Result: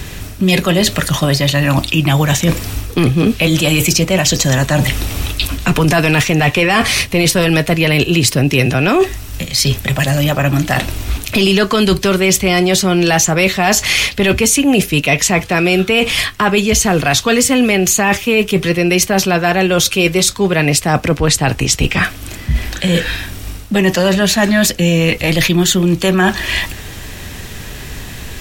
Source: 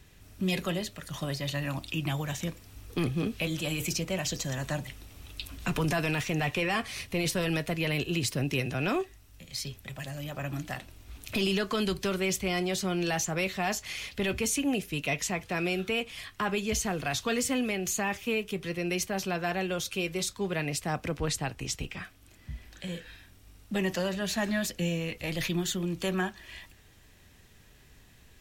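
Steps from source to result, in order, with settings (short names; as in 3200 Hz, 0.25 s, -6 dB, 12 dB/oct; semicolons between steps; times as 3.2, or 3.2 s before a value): reverse; compressor 6:1, threshold -39 dBFS, peak gain reduction 13.5 dB; reverse; maximiser +30 dB; gain -1 dB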